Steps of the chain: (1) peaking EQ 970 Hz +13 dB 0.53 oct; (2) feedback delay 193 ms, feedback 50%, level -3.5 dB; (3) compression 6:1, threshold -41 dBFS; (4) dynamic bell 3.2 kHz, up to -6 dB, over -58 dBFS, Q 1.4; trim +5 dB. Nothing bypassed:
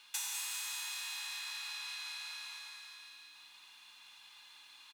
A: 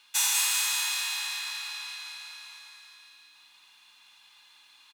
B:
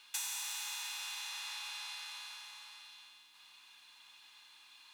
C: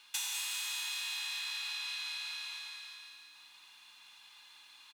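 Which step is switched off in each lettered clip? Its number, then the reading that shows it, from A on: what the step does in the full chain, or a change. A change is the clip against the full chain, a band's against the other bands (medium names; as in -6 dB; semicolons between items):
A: 3, mean gain reduction 4.0 dB; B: 2, momentary loudness spread change +2 LU; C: 4, momentary loudness spread change +2 LU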